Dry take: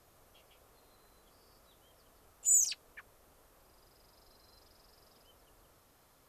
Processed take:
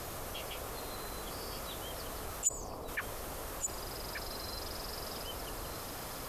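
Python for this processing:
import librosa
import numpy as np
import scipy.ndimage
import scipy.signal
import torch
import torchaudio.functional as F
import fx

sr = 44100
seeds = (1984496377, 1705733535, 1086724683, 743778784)

y = fx.ellip_lowpass(x, sr, hz=1100.0, order=4, stop_db=40, at=(2.47, 2.87), fade=0.02)
y = y + 10.0 ** (-11.5 / 20.0) * np.pad(y, (int(1178 * sr / 1000.0), 0))[:len(y)]
y = fx.env_flatten(y, sr, amount_pct=50)
y = y * librosa.db_to_amplitude(7.0)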